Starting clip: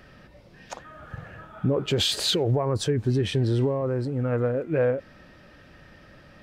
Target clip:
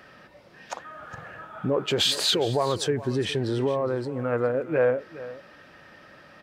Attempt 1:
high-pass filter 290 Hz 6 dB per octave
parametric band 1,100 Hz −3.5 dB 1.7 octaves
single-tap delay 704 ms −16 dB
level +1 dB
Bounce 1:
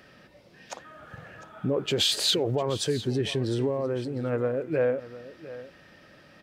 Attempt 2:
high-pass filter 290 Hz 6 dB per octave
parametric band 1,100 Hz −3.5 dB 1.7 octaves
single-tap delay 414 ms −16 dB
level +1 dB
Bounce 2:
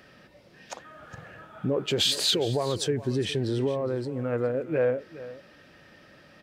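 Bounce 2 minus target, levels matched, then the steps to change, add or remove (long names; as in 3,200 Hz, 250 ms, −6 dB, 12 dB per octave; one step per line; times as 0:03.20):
1,000 Hz band −4.5 dB
change: parametric band 1,100 Hz +4 dB 1.7 octaves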